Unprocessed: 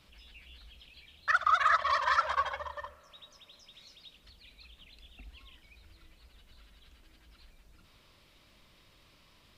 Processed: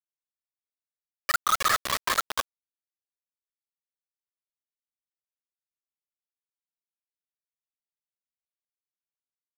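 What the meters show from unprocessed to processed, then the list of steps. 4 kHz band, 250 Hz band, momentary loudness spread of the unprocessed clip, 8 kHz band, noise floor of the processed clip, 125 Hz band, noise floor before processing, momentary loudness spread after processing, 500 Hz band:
+8.0 dB, +12.0 dB, 15 LU, +19.5 dB, under -85 dBFS, no reading, -63 dBFS, 12 LU, +1.0 dB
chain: bit crusher 4-bit

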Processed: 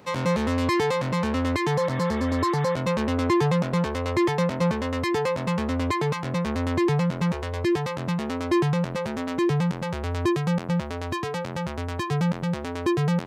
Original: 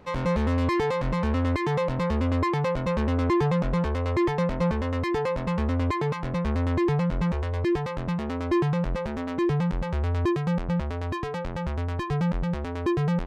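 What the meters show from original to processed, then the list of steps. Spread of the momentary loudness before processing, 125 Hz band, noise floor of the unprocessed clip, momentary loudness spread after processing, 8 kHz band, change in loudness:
6 LU, 0.0 dB, -31 dBFS, 6 LU, no reading, +1.0 dB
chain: high-pass 95 Hz 24 dB/octave; spectral replace 1.79–2.72 s, 1.1–3.8 kHz before; treble shelf 4.2 kHz +11 dB; trim +1.5 dB

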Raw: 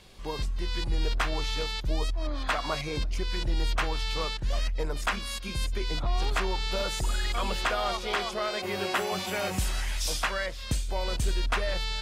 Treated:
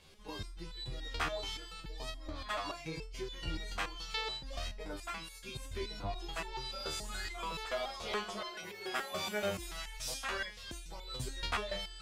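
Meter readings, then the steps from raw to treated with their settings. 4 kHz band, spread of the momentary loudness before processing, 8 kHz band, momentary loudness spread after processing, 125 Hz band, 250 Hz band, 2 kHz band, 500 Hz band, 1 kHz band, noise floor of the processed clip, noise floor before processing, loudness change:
-8.0 dB, 4 LU, -8.5 dB, 8 LU, -13.5 dB, -9.5 dB, -8.0 dB, -8.5 dB, -9.0 dB, -50 dBFS, -37 dBFS, -9.5 dB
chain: spectral replace 3.40–3.65 s, 1.3–2.9 kHz after; resonator arpeggio 7 Hz 78–440 Hz; trim +3 dB

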